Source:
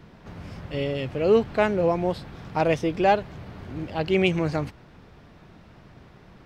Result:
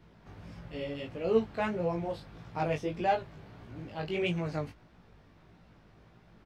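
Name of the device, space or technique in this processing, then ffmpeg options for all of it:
double-tracked vocal: -filter_complex "[0:a]asplit=2[link_01][link_02];[link_02]adelay=18,volume=-7dB[link_03];[link_01][link_03]amix=inputs=2:normalize=0,flanger=delay=16.5:depth=4.1:speed=1.6,volume=-7dB"

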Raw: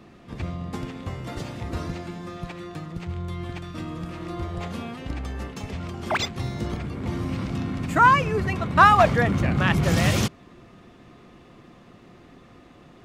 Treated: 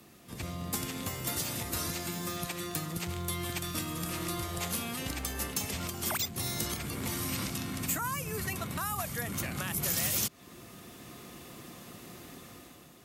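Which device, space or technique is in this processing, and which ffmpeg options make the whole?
FM broadcast chain: -filter_complex "[0:a]highpass=56,dynaudnorm=framelen=140:gausssize=9:maxgain=8.5dB,acrossover=split=240|1000|7500[link_01][link_02][link_03][link_04];[link_01]acompressor=threshold=-29dB:ratio=4[link_05];[link_02]acompressor=threshold=-32dB:ratio=4[link_06];[link_03]acompressor=threshold=-30dB:ratio=4[link_07];[link_04]acompressor=threshold=-46dB:ratio=4[link_08];[link_05][link_06][link_07][link_08]amix=inputs=4:normalize=0,aemphasis=mode=production:type=50fm,alimiter=limit=-17.5dB:level=0:latency=1:release=345,asoftclip=type=hard:threshold=-18.5dB,lowpass=frequency=15000:width=0.5412,lowpass=frequency=15000:width=1.3066,aemphasis=mode=production:type=50fm,volume=-7.5dB"

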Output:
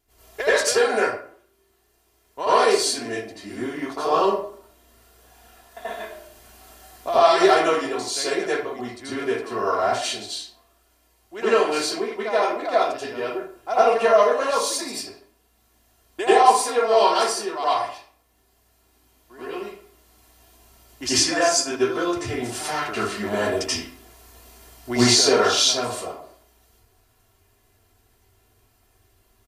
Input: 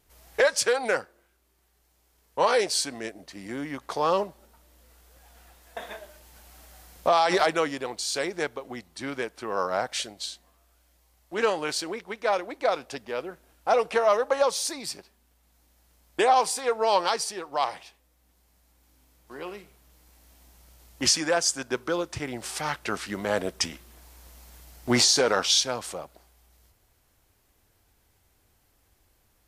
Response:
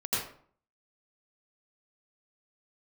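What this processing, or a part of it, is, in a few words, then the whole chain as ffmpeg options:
microphone above a desk: -filter_complex "[0:a]aecho=1:1:2.9:0.56[link_01];[1:a]atrim=start_sample=2205[link_02];[link_01][link_02]afir=irnorm=-1:irlink=0,volume=-3.5dB"

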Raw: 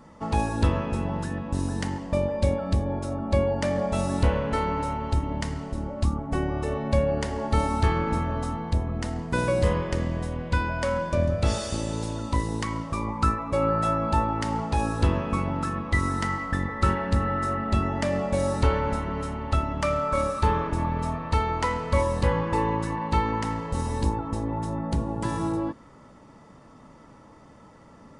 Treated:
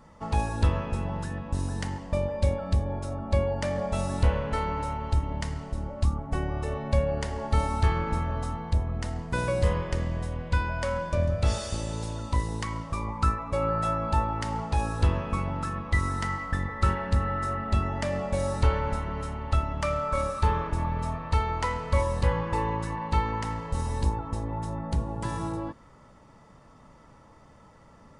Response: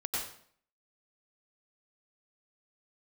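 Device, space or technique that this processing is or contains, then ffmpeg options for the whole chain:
low shelf boost with a cut just above: -af "lowshelf=frequency=69:gain=6,equalizer=frequency=280:width_type=o:width=1.1:gain=-5.5,volume=-2.5dB"

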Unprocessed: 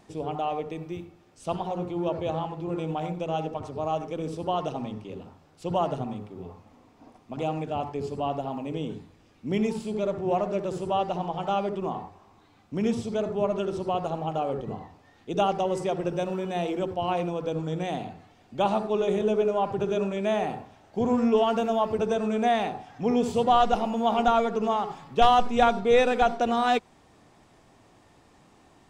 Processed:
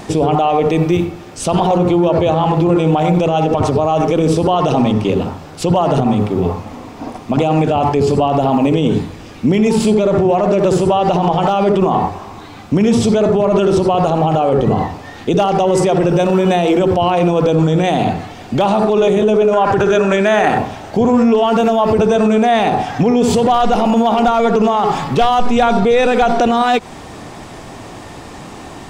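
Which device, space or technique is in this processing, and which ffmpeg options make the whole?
loud club master: -filter_complex "[0:a]acompressor=threshold=-25dB:ratio=2.5,asoftclip=type=hard:threshold=-18.5dB,alimiter=level_in=29.5dB:limit=-1dB:release=50:level=0:latency=1,asettb=1/sr,asplit=3[link_01][link_02][link_03];[link_01]atrim=end=19.534[link_04];[link_02]atrim=start=19.53:end=20.58,asetpts=PTS-STARTPTS,afade=type=in:duration=0.004:curve=qsin,afade=type=out:start_time=1.046:duration=0.004:curve=qsin,equalizer=frequency=160:width_type=o:width=0.67:gain=-5,equalizer=frequency=1600:width_type=o:width=0.67:gain=11,equalizer=frequency=6300:width_type=o:width=0.67:gain=4[link_05];[link_03]atrim=start=20.576[link_06];[link_04][link_05]acrossfade=duration=0.004:curve1=hsin:curve2=qsin[link_07];[link_07][link_06]acrossfade=duration=0.004:curve1=qsin:curve2=hsin,volume=-4.5dB"

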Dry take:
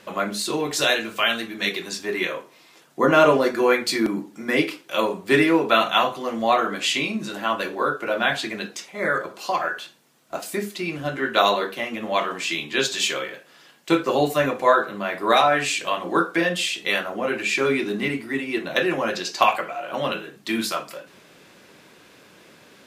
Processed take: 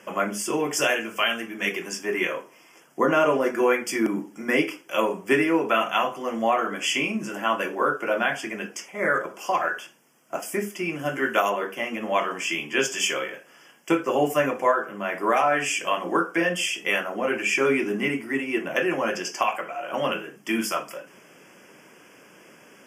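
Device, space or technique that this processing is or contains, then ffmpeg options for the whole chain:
PA system with an anti-feedback notch: -filter_complex "[0:a]asettb=1/sr,asplit=3[link_01][link_02][link_03];[link_01]atrim=end=10.994[link_04];[link_02]atrim=start=10.99:end=11.5,asetpts=PTS-STARTPTS,afade=type=in:duration=0.004:curve=qsin,afade=type=out:start_time=0.506:duration=0.004:curve=qsin,highshelf=frequency=6400:gain=8.5[link_05];[link_03]atrim=start=11.496[link_06];[link_04][link_05]acrossfade=duration=0.004:curve1=hsin:curve2=qsin[link_07];[link_07][link_06]acrossfade=duration=0.004:curve1=qsin:curve2=hsin,highpass=150,asuperstop=centerf=4000:order=8:qfactor=2.5,alimiter=limit=-10dB:level=0:latency=1:release=497"

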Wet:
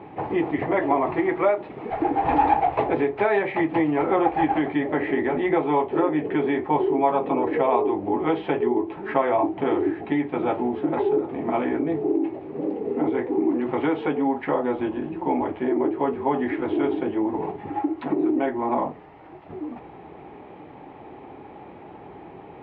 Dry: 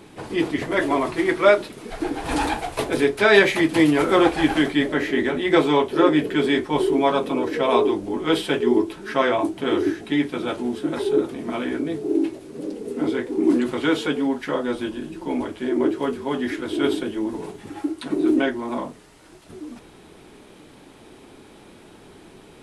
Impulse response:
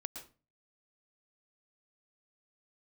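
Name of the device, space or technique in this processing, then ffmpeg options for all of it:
bass amplifier: -af "acompressor=threshold=-23dB:ratio=5,highpass=71,equalizer=frequency=220:width_type=q:width=4:gain=-5,equalizer=frequency=800:width_type=q:width=4:gain=10,equalizer=frequency=1500:width_type=q:width=4:gain=-8,lowpass=frequency=2200:width=0.5412,lowpass=frequency=2200:width=1.3066,volume=4dB"

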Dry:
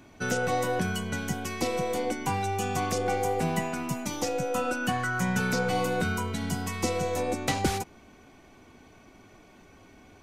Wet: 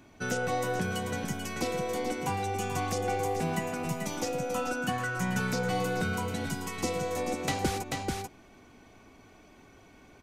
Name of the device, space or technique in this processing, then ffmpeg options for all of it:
ducked delay: -filter_complex "[0:a]asplit=3[link_01][link_02][link_03];[link_02]adelay=438,volume=-3.5dB[link_04];[link_03]apad=whole_len=470407[link_05];[link_04][link_05]sidechaincompress=threshold=-31dB:ratio=8:attack=16:release=225[link_06];[link_01][link_06]amix=inputs=2:normalize=0,volume=-3dB"

